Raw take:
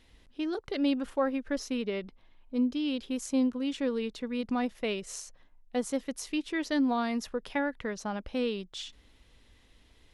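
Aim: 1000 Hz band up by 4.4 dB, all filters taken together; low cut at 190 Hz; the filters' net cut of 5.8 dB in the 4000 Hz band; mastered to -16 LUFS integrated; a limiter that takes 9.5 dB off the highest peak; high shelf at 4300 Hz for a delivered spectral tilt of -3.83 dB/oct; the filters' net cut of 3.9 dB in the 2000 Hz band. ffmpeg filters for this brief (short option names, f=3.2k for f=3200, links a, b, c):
-af "highpass=190,equalizer=f=1k:t=o:g=7.5,equalizer=f=2k:t=o:g=-5.5,equalizer=f=4k:t=o:g=-4,highshelf=f=4.3k:g=-4,volume=18dB,alimiter=limit=-5.5dB:level=0:latency=1"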